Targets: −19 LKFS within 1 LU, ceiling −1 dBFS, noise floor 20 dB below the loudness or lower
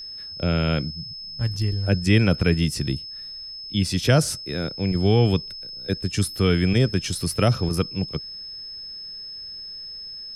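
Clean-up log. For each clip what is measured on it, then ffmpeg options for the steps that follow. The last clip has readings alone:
interfering tone 5,200 Hz; level of the tone −34 dBFS; integrated loudness −24.0 LKFS; sample peak −5.5 dBFS; target loudness −19.0 LKFS
→ -af "bandreject=frequency=5200:width=30"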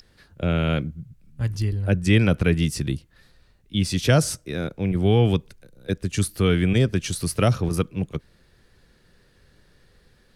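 interfering tone none found; integrated loudness −23.0 LKFS; sample peak −5.5 dBFS; target loudness −19.0 LKFS
→ -af "volume=4dB"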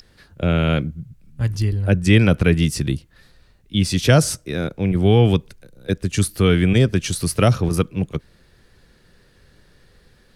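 integrated loudness −19.0 LKFS; sample peak −1.5 dBFS; background noise floor −55 dBFS

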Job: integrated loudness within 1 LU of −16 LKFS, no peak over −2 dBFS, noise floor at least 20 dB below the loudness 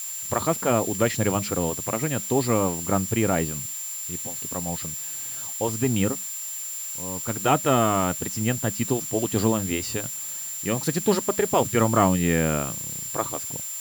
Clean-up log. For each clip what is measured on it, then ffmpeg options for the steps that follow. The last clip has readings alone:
interfering tone 7,300 Hz; level of the tone −32 dBFS; background noise floor −33 dBFS; target noise floor −45 dBFS; integrated loudness −24.5 LKFS; sample peak −6.5 dBFS; target loudness −16.0 LKFS
→ -af "bandreject=frequency=7300:width=30"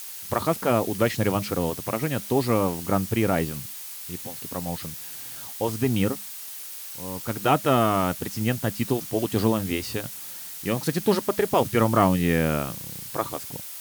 interfering tone none found; background noise floor −38 dBFS; target noise floor −46 dBFS
→ -af "afftdn=noise_reduction=8:noise_floor=-38"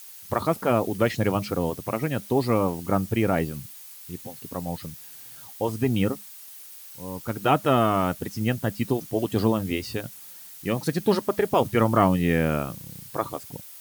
background noise floor −44 dBFS; target noise floor −46 dBFS
→ -af "afftdn=noise_reduction=6:noise_floor=-44"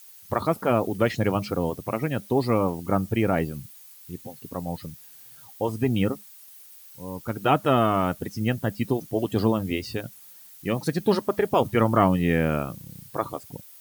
background noise floor −48 dBFS; integrated loudness −25.5 LKFS; sample peak −6.5 dBFS; target loudness −16.0 LKFS
→ -af "volume=9.5dB,alimiter=limit=-2dB:level=0:latency=1"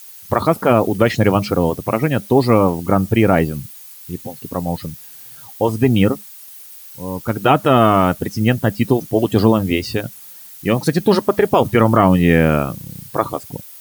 integrated loudness −16.5 LKFS; sample peak −2.0 dBFS; background noise floor −39 dBFS

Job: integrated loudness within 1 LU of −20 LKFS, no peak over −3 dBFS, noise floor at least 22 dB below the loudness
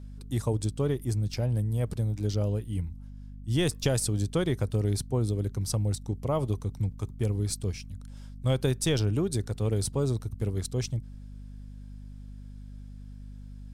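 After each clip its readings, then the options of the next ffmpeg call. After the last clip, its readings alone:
mains hum 50 Hz; hum harmonics up to 250 Hz; level of the hum −40 dBFS; integrated loudness −29.5 LKFS; sample peak −13.5 dBFS; target loudness −20.0 LKFS
→ -af "bandreject=frequency=50:width_type=h:width=6,bandreject=frequency=100:width_type=h:width=6,bandreject=frequency=150:width_type=h:width=6,bandreject=frequency=200:width_type=h:width=6,bandreject=frequency=250:width_type=h:width=6"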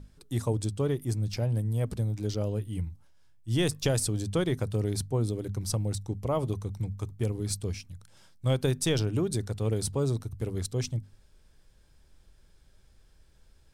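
mains hum none found; integrated loudness −30.5 LKFS; sample peak −15.0 dBFS; target loudness −20.0 LKFS
→ -af "volume=10.5dB"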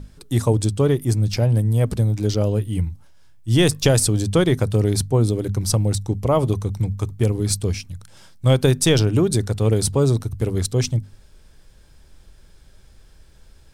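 integrated loudness −20.0 LKFS; sample peak −4.5 dBFS; background noise floor −50 dBFS

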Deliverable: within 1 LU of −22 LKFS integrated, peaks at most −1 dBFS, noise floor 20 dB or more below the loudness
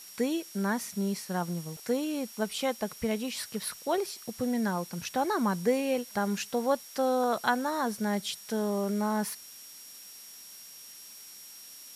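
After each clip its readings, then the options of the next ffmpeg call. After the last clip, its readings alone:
interfering tone 5,600 Hz; level of the tone −50 dBFS; background noise floor −48 dBFS; target noise floor −51 dBFS; integrated loudness −31.0 LKFS; sample peak −12.0 dBFS; target loudness −22.0 LKFS
→ -af "bandreject=frequency=5600:width=30"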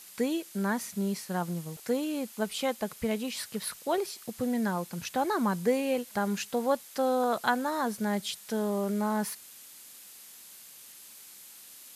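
interfering tone none found; background noise floor −50 dBFS; target noise floor −51 dBFS
→ -af "afftdn=noise_reduction=6:noise_floor=-50"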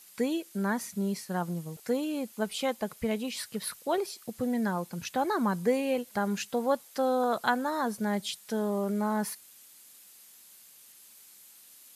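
background noise floor −55 dBFS; integrated loudness −31.0 LKFS; sample peak −12.0 dBFS; target loudness −22.0 LKFS
→ -af "volume=9dB"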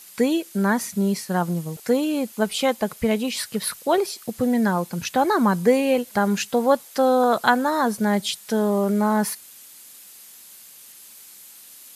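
integrated loudness −22.0 LKFS; sample peak −3.0 dBFS; background noise floor −46 dBFS

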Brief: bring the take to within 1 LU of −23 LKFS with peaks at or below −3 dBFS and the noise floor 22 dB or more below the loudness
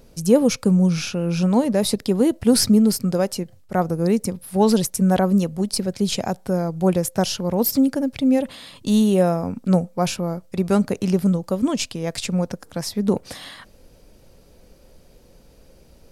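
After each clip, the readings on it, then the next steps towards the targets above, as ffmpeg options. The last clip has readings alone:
integrated loudness −20.5 LKFS; sample peak −3.5 dBFS; target loudness −23.0 LKFS
→ -af "volume=-2.5dB"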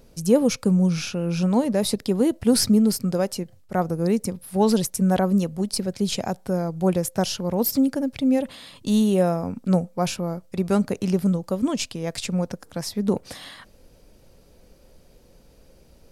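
integrated loudness −23.0 LKFS; sample peak −6.0 dBFS; background noise floor −54 dBFS

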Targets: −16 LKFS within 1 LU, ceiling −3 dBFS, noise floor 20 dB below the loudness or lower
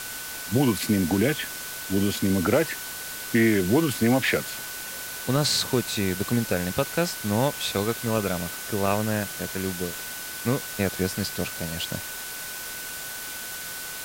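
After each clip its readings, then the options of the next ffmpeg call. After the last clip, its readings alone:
interfering tone 1,500 Hz; level of the tone −40 dBFS; background noise floor −36 dBFS; target noise floor −46 dBFS; integrated loudness −26.0 LKFS; sample peak −7.5 dBFS; target loudness −16.0 LKFS
→ -af "bandreject=frequency=1500:width=30"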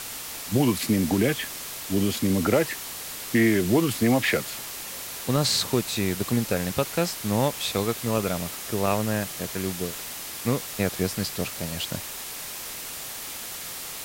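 interfering tone none found; background noise floor −36 dBFS; target noise floor −46 dBFS
→ -af "afftdn=noise_reduction=10:noise_floor=-36"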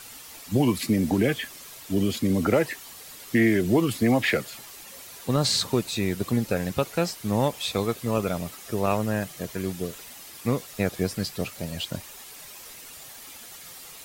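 background noise floor −44 dBFS; target noise floor −46 dBFS
→ -af "afftdn=noise_reduction=6:noise_floor=-44"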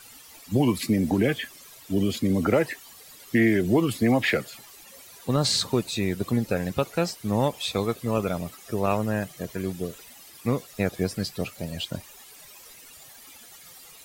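background noise floor −49 dBFS; integrated loudness −26.0 LKFS; sample peak −8.5 dBFS; target loudness −16.0 LKFS
→ -af "volume=10dB,alimiter=limit=-3dB:level=0:latency=1"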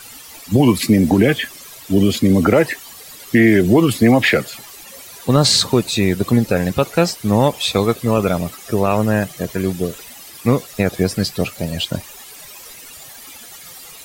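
integrated loudness −16.5 LKFS; sample peak −3.0 dBFS; background noise floor −39 dBFS

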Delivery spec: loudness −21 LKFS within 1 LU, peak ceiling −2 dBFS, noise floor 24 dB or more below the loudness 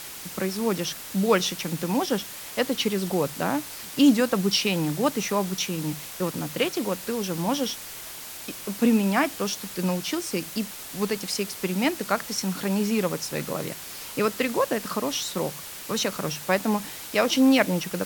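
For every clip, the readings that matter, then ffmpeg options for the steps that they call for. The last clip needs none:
background noise floor −39 dBFS; target noise floor −50 dBFS; integrated loudness −26.0 LKFS; sample peak −5.5 dBFS; target loudness −21.0 LKFS
→ -af "afftdn=noise_reduction=11:noise_floor=-39"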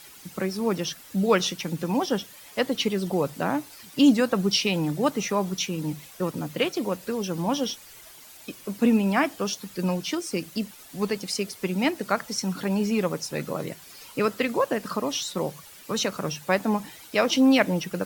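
background noise floor −48 dBFS; target noise floor −50 dBFS
→ -af "afftdn=noise_reduction=6:noise_floor=-48"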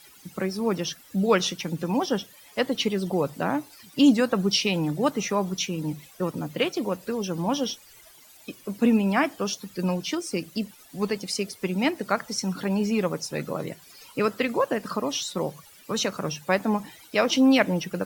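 background noise floor −52 dBFS; integrated loudness −26.0 LKFS; sample peak −5.5 dBFS; target loudness −21.0 LKFS
→ -af "volume=5dB,alimiter=limit=-2dB:level=0:latency=1"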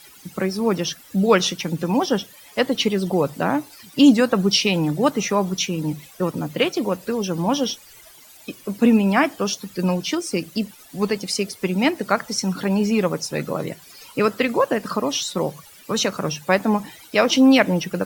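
integrated loudness −21.0 LKFS; sample peak −2.0 dBFS; background noise floor −47 dBFS

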